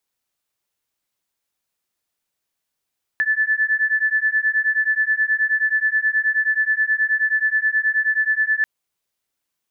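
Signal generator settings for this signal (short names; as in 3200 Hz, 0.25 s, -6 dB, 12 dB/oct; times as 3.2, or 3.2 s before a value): beating tones 1740 Hz, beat 9.4 Hz, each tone -19.5 dBFS 5.44 s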